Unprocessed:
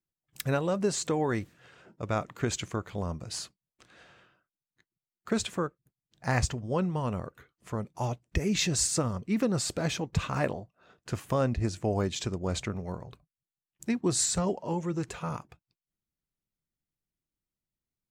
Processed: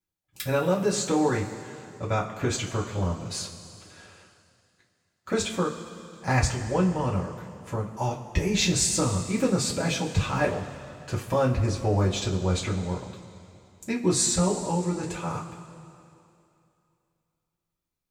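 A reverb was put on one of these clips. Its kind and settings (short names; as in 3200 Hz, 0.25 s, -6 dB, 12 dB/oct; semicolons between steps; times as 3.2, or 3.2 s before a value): two-slope reverb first 0.2 s, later 2.7 s, from -18 dB, DRR -5.5 dB; gain -2 dB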